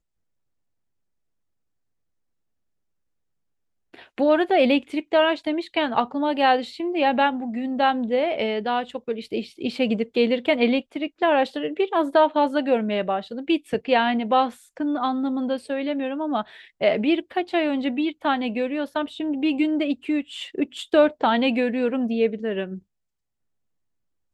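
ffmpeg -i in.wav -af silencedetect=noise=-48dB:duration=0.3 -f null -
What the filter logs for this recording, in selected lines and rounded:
silence_start: 0.00
silence_end: 3.94 | silence_duration: 3.94
silence_start: 22.80
silence_end: 24.34 | silence_duration: 1.54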